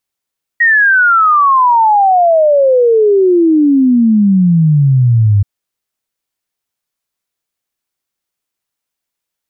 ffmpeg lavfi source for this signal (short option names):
-f lavfi -i "aevalsrc='0.531*clip(min(t,4.83-t)/0.01,0,1)*sin(2*PI*1900*4.83/log(98/1900)*(exp(log(98/1900)*t/4.83)-1))':d=4.83:s=44100"